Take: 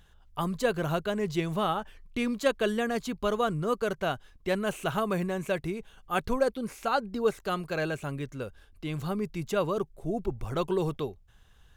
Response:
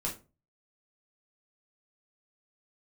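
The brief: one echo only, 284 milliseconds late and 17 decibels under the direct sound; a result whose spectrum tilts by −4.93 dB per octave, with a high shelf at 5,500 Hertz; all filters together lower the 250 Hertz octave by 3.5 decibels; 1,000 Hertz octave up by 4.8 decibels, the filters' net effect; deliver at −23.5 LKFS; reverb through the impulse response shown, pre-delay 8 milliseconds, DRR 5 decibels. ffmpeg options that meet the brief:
-filter_complex "[0:a]equalizer=frequency=250:width_type=o:gain=-5.5,equalizer=frequency=1000:width_type=o:gain=6.5,highshelf=frequency=5500:gain=7.5,aecho=1:1:284:0.141,asplit=2[link_01][link_02];[1:a]atrim=start_sample=2205,adelay=8[link_03];[link_02][link_03]afir=irnorm=-1:irlink=0,volume=-8dB[link_04];[link_01][link_04]amix=inputs=2:normalize=0,volume=4.5dB"

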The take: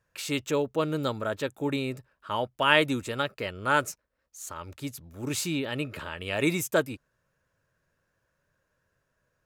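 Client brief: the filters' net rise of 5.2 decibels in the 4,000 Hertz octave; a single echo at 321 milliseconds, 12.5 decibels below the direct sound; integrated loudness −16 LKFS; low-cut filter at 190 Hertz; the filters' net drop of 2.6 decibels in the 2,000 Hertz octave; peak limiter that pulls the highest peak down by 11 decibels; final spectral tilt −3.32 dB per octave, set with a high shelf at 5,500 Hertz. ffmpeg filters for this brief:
ffmpeg -i in.wav -af "highpass=190,equalizer=frequency=2000:width_type=o:gain=-7,equalizer=frequency=4000:width_type=o:gain=7.5,highshelf=frequency=5500:gain=7,alimiter=limit=-16dB:level=0:latency=1,aecho=1:1:321:0.237,volume=14.5dB" out.wav

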